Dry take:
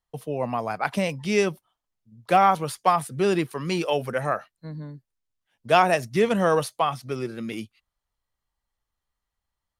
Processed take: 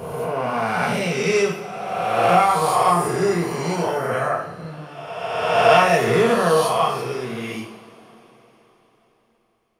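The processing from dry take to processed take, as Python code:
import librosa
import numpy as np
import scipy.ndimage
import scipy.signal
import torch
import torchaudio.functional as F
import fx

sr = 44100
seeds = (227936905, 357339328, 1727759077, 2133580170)

y = fx.spec_swells(x, sr, rise_s=1.81)
y = fx.band_shelf(y, sr, hz=3100.0, db=-10.5, octaves=1.0, at=(2.9, 4.11))
y = fx.rev_double_slope(y, sr, seeds[0], early_s=0.52, late_s=4.3, knee_db=-22, drr_db=-3.0)
y = y * 10.0 ** (-4.0 / 20.0)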